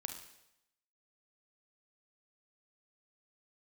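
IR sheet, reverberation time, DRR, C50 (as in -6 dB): 0.85 s, 5.0 dB, 7.5 dB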